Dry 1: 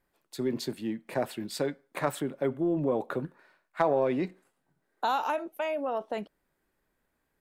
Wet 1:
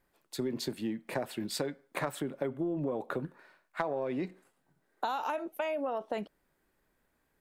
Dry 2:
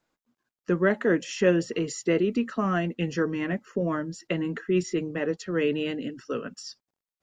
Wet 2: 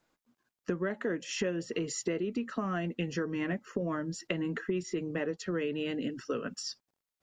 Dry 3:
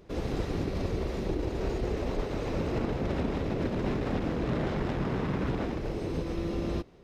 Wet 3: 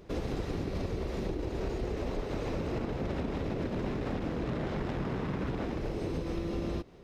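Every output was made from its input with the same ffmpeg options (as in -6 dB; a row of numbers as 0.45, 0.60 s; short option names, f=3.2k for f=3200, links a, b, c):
-af "acompressor=threshold=-32dB:ratio=6,volume=2dB"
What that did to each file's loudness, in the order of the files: -4.5, -7.5, -3.0 LU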